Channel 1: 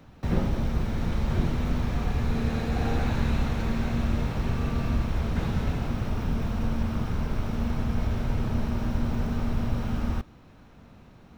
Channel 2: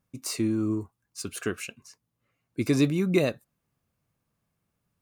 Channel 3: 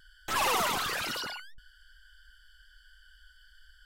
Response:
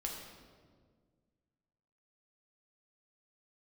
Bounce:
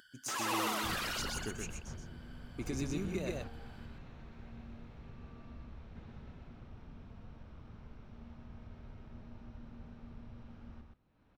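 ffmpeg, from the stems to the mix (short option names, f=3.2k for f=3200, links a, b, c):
-filter_complex "[0:a]lowpass=4.7k,adelay=600,volume=-18dB,asplit=2[a][b];[b]volume=-10.5dB[c];[1:a]equalizer=f=6.5k:t=o:w=0.36:g=11.5,volume=-12dB,asplit=3[d][e][f];[e]volume=-5.5dB[g];[2:a]highpass=210,volume=-5dB,asplit=2[h][i];[i]volume=-4dB[j];[f]apad=whole_len=527981[k];[a][k]sidechaingate=range=-7dB:threshold=-59dB:ratio=16:detection=peak[l];[d][h]amix=inputs=2:normalize=0,acompressor=threshold=-35dB:ratio=6,volume=0dB[m];[c][g][j]amix=inputs=3:normalize=0,aecho=0:1:125:1[n];[l][m][n]amix=inputs=3:normalize=0,acompressor=mode=upward:threshold=-59dB:ratio=2.5"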